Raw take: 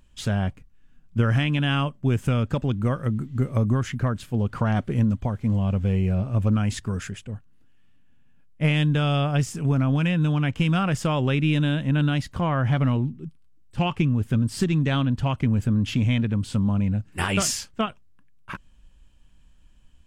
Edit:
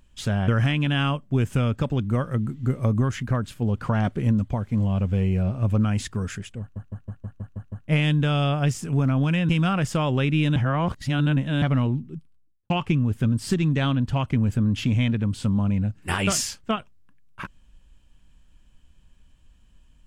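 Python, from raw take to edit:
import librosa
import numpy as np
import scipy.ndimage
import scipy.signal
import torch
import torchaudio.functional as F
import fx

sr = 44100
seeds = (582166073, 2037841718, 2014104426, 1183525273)

y = fx.studio_fade_out(x, sr, start_s=13.24, length_s=0.56)
y = fx.edit(y, sr, fx.cut(start_s=0.48, length_s=0.72),
    fx.stutter_over(start_s=7.32, slice_s=0.16, count=8),
    fx.cut(start_s=10.21, length_s=0.38),
    fx.reverse_span(start_s=11.66, length_s=1.06), tone=tone)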